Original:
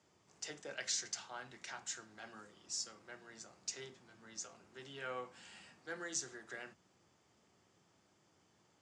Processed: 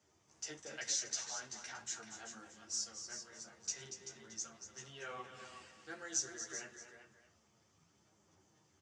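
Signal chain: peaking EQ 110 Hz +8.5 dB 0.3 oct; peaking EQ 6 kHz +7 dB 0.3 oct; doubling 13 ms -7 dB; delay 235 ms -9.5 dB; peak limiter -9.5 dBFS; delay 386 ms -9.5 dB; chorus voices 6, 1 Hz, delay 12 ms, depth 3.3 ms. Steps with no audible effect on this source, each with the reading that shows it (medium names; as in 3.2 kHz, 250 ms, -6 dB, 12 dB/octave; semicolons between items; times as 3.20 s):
peak limiter -9.5 dBFS: peak at its input -20.5 dBFS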